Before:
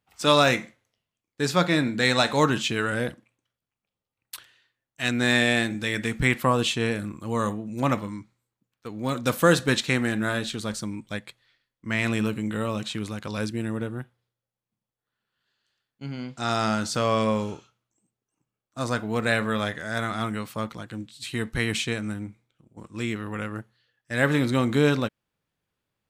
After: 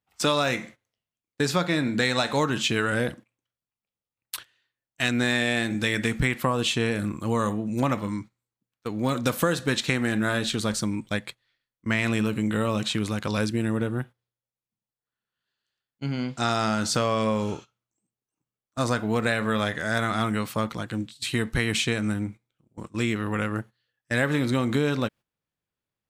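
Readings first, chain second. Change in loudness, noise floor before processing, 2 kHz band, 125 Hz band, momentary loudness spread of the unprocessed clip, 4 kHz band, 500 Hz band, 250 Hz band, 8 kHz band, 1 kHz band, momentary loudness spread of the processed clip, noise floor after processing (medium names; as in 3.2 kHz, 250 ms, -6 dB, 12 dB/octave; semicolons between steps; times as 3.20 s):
-0.5 dB, under -85 dBFS, -1.0 dB, +0.5 dB, 16 LU, -0.5 dB, -1.0 dB, +0.5 dB, +1.5 dB, -1.0 dB, 9 LU, under -85 dBFS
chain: gate -44 dBFS, range -13 dB; compression, threshold -26 dBFS, peak gain reduction 12.5 dB; trim +5.5 dB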